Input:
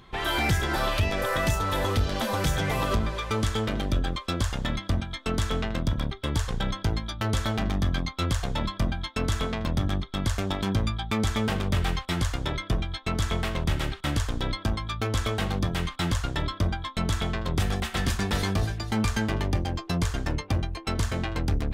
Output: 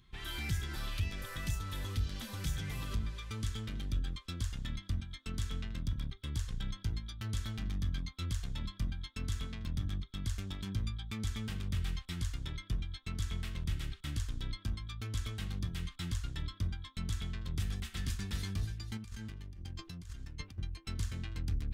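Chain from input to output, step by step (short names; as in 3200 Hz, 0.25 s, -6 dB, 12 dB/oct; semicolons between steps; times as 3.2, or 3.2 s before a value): passive tone stack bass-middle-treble 6-0-2; 18.97–20.58 negative-ratio compressor -49 dBFS, ratio -1; gain +4 dB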